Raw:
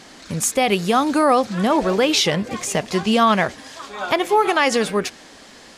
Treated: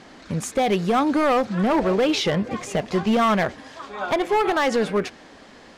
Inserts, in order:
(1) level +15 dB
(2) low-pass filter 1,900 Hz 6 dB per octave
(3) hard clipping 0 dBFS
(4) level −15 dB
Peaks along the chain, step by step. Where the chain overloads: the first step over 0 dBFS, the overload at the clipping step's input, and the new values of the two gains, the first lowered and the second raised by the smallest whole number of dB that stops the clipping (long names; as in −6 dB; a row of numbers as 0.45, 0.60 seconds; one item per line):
+9.5, +8.5, 0.0, −15.0 dBFS
step 1, 8.5 dB
step 1 +6 dB, step 4 −6 dB